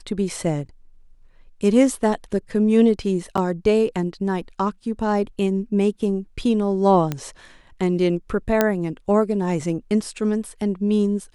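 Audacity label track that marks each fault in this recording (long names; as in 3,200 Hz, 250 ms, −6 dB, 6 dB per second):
3.370000	3.380000	drop-out 7.4 ms
7.120000	7.120000	click −11 dBFS
8.610000	8.610000	click −3 dBFS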